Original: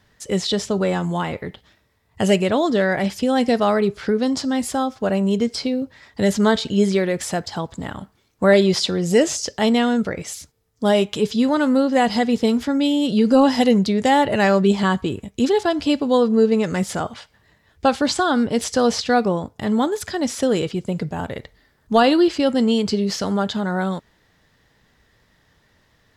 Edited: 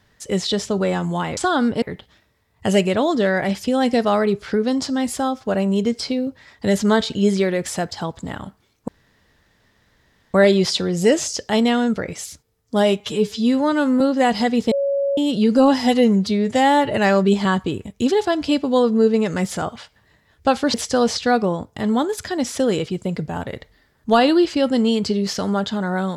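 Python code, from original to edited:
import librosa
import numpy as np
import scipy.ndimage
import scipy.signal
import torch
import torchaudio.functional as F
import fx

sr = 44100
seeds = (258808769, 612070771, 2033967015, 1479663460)

y = fx.edit(x, sr, fx.insert_room_tone(at_s=8.43, length_s=1.46),
    fx.stretch_span(start_s=11.09, length_s=0.67, factor=1.5),
    fx.bleep(start_s=12.47, length_s=0.46, hz=558.0, db=-17.0),
    fx.stretch_span(start_s=13.54, length_s=0.75, factor=1.5),
    fx.move(start_s=18.12, length_s=0.45, to_s=1.37), tone=tone)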